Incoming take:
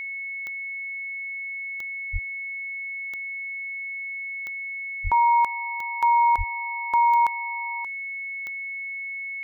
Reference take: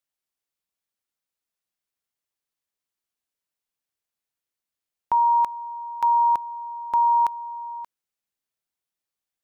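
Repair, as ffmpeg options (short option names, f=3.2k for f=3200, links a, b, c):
-filter_complex "[0:a]adeclick=t=4,bandreject=f=2.2k:w=30,asplit=3[a][b][c];[a]afade=t=out:st=2.12:d=0.02[d];[b]highpass=f=140:w=0.5412,highpass=f=140:w=1.3066,afade=t=in:st=2.12:d=0.02,afade=t=out:st=2.24:d=0.02[e];[c]afade=t=in:st=2.24:d=0.02[f];[d][e][f]amix=inputs=3:normalize=0,asplit=3[g][h][i];[g]afade=t=out:st=5.03:d=0.02[j];[h]highpass=f=140:w=0.5412,highpass=f=140:w=1.3066,afade=t=in:st=5.03:d=0.02,afade=t=out:st=5.15:d=0.02[k];[i]afade=t=in:st=5.15:d=0.02[l];[j][k][l]amix=inputs=3:normalize=0,asplit=3[m][n][o];[m]afade=t=out:st=6.37:d=0.02[p];[n]highpass=f=140:w=0.5412,highpass=f=140:w=1.3066,afade=t=in:st=6.37:d=0.02,afade=t=out:st=6.49:d=0.02[q];[o]afade=t=in:st=6.49:d=0.02[r];[p][q][r]amix=inputs=3:normalize=0"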